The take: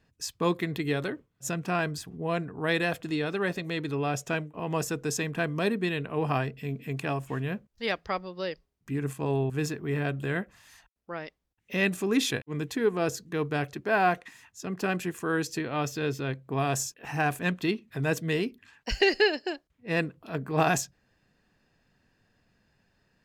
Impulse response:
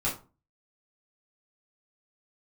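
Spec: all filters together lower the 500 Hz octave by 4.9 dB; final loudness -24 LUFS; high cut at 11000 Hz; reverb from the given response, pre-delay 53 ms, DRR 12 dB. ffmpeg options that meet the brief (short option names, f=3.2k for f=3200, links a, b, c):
-filter_complex "[0:a]lowpass=11k,equalizer=f=500:t=o:g=-6.5,asplit=2[a][b];[1:a]atrim=start_sample=2205,adelay=53[c];[b][c]afir=irnorm=-1:irlink=0,volume=-19.5dB[d];[a][d]amix=inputs=2:normalize=0,volume=7dB"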